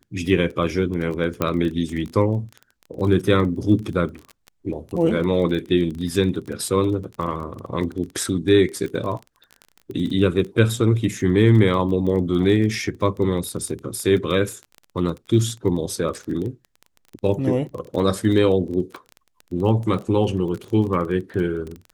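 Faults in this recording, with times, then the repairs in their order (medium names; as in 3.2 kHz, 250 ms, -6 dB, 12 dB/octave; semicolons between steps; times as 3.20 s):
crackle 21 per s -28 dBFS
1.42 s: pop -8 dBFS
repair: de-click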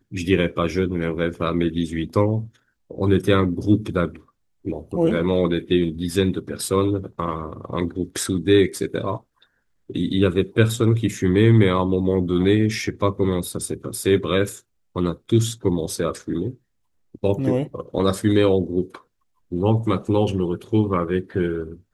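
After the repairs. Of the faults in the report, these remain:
nothing left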